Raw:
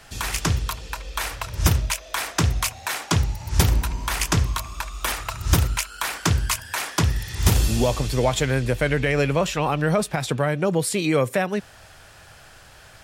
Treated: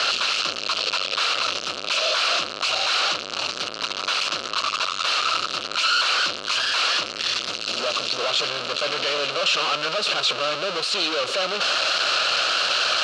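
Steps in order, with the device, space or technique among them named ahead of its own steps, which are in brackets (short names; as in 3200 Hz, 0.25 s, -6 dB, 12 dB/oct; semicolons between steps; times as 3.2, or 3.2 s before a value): home computer beeper (infinite clipping; speaker cabinet 510–5800 Hz, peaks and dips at 570 Hz +4 dB, 870 Hz -9 dB, 1300 Hz +9 dB, 1900 Hz -9 dB, 2800 Hz +9 dB, 4200 Hz +10 dB)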